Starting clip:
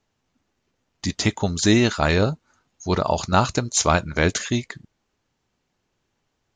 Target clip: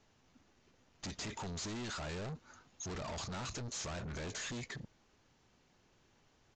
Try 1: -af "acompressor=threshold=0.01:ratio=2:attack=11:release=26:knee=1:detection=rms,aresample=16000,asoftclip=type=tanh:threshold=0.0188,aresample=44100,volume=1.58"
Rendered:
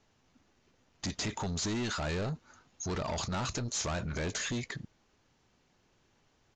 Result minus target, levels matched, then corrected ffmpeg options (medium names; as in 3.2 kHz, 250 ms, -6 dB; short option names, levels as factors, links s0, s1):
saturation: distortion -4 dB
-af "acompressor=threshold=0.01:ratio=2:attack=11:release=26:knee=1:detection=rms,aresample=16000,asoftclip=type=tanh:threshold=0.00596,aresample=44100,volume=1.58"